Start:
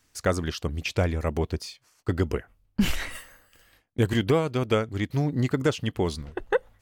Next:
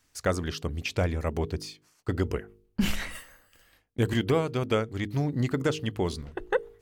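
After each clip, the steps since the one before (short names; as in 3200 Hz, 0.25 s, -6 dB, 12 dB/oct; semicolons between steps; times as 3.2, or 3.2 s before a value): de-hum 51.42 Hz, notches 9; gain -2 dB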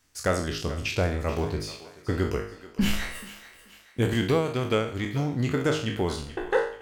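spectral trails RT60 0.51 s; thinning echo 0.432 s, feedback 45%, high-pass 470 Hz, level -14.5 dB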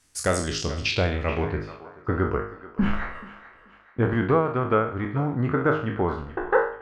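low-pass sweep 10000 Hz -> 1300 Hz, 0.31–1.8; gain +1.5 dB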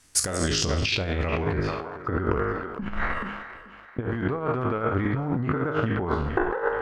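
negative-ratio compressor -29 dBFS, ratio -1; transient shaper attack +7 dB, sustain +11 dB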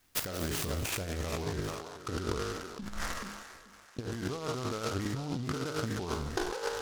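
noise-modulated delay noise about 3900 Hz, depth 0.07 ms; gain -9 dB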